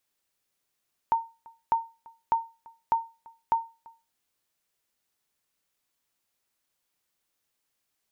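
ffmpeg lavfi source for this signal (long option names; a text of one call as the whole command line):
ffmpeg -f lavfi -i "aevalsrc='0.168*(sin(2*PI*914*mod(t,0.6))*exp(-6.91*mod(t,0.6)/0.29)+0.0531*sin(2*PI*914*max(mod(t,0.6)-0.34,0))*exp(-6.91*max(mod(t,0.6)-0.34,0)/0.29))':duration=3:sample_rate=44100" out.wav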